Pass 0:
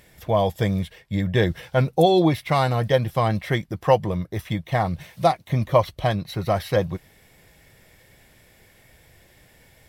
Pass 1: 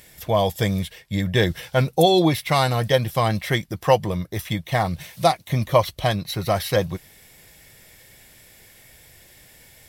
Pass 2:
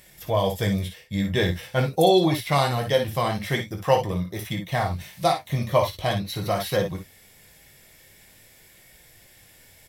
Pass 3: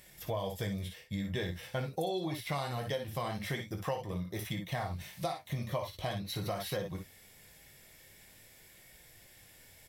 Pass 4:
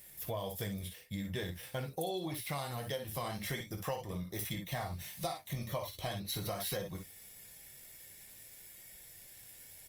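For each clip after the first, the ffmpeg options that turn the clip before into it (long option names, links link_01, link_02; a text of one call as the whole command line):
ffmpeg -i in.wav -af "highshelf=frequency=3000:gain=10.5" out.wav
ffmpeg -i in.wav -filter_complex "[0:a]flanger=delay=5.3:depth=8.8:regen=-52:speed=0.45:shape=sinusoidal,asplit=2[link_01][link_02];[link_02]aecho=0:1:21|56|66:0.376|0.376|0.237[link_03];[link_01][link_03]amix=inputs=2:normalize=0" out.wav
ffmpeg -i in.wav -af "acompressor=threshold=-28dB:ratio=5,volume=-5dB" out.wav
ffmpeg -i in.wav -af "crystalizer=i=1.5:c=0,volume=-3dB" -ar 48000 -c:a libopus -b:a 32k out.opus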